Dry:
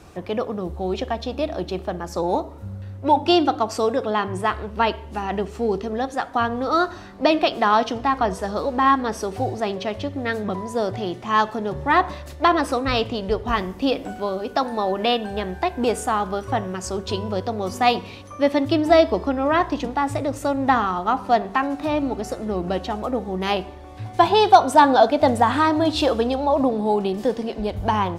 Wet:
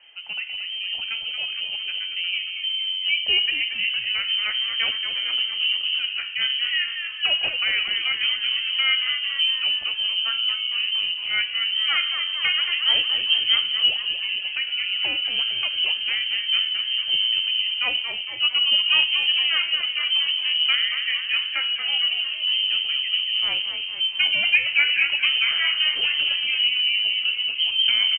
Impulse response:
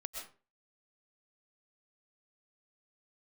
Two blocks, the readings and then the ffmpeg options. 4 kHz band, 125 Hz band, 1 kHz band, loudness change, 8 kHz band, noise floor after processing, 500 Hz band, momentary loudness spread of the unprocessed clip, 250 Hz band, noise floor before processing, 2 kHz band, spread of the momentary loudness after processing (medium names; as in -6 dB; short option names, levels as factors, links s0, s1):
+15.5 dB, under -25 dB, -22.0 dB, +1.5 dB, under -40 dB, -31 dBFS, -28.0 dB, 10 LU, under -30 dB, -38 dBFS, +6.5 dB, 7 LU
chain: -filter_complex "[0:a]bandreject=f=61.07:t=h:w=4,bandreject=f=122.14:t=h:w=4,bandreject=f=183.21:t=h:w=4,bandreject=f=244.28:t=h:w=4,bandreject=f=305.35:t=h:w=4,bandreject=f=366.42:t=h:w=4,bandreject=f=427.49:t=h:w=4,bandreject=f=488.56:t=h:w=4,bandreject=f=549.63:t=h:w=4,bandreject=f=610.7:t=h:w=4,bandreject=f=671.77:t=h:w=4,bandreject=f=732.84:t=h:w=4,bandreject=f=793.91:t=h:w=4,bandreject=f=854.98:t=h:w=4,bandreject=f=916.05:t=h:w=4,bandreject=f=977.12:t=h:w=4,bandreject=f=1038.19:t=h:w=4,bandreject=f=1099.26:t=h:w=4,bandreject=f=1160.33:t=h:w=4,bandreject=f=1221.4:t=h:w=4,bandreject=f=1282.47:t=h:w=4,bandreject=f=1343.54:t=h:w=4,bandreject=f=1404.61:t=h:w=4,bandreject=f=1465.68:t=h:w=4,bandreject=f=1526.75:t=h:w=4,bandreject=f=1587.82:t=h:w=4,bandreject=f=1648.89:t=h:w=4,bandreject=f=1709.96:t=h:w=4,bandreject=f=1771.03:t=h:w=4,bandreject=f=1832.1:t=h:w=4,bandreject=f=1893.17:t=h:w=4,asubboost=boost=5.5:cutoff=230,lowpass=f=2700:t=q:w=0.5098,lowpass=f=2700:t=q:w=0.6013,lowpass=f=2700:t=q:w=0.9,lowpass=f=2700:t=q:w=2.563,afreqshift=-3200,asplit=2[s0][s1];[s1]asplit=7[s2][s3][s4][s5][s6][s7][s8];[s2]adelay=229,afreqshift=-90,volume=0.398[s9];[s3]adelay=458,afreqshift=-180,volume=0.219[s10];[s4]adelay=687,afreqshift=-270,volume=0.12[s11];[s5]adelay=916,afreqshift=-360,volume=0.0661[s12];[s6]adelay=1145,afreqshift=-450,volume=0.0363[s13];[s7]adelay=1374,afreqshift=-540,volume=0.02[s14];[s8]adelay=1603,afreqshift=-630,volume=0.011[s15];[s9][s10][s11][s12][s13][s14][s15]amix=inputs=7:normalize=0[s16];[s0][s16]amix=inputs=2:normalize=0,crystalizer=i=1.5:c=0,volume=0.447"